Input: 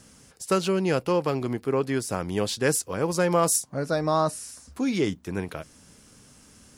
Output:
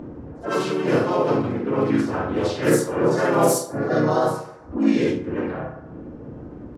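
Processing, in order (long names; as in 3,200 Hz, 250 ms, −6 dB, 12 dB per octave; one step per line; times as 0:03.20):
every overlapping window played backwards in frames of 132 ms
high-shelf EQ 3,900 Hz −4.5 dB
low-pass that shuts in the quiet parts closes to 540 Hz, open at −22.5 dBFS
low-shelf EQ 250 Hz −4 dB
feedback delay network reverb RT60 0.57 s, low-frequency decay 0.8×, high-frequency decay 0.5×, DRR −8.5 dB
upward compression, threshold −20 dBFS
pitch-shifted copies added −4 semitones −4 dB, +3 semitones −5 dB
level −3.5 dB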